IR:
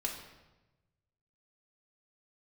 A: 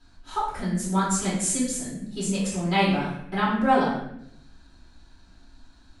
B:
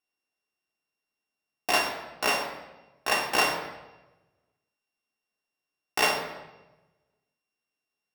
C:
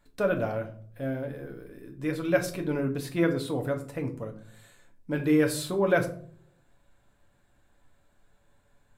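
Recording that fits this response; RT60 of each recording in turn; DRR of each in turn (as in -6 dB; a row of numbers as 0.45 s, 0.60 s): B; 0.75 s, 1.1 s, 0.50 s; -8.5 dB, -1.5 dB, 3.0 dB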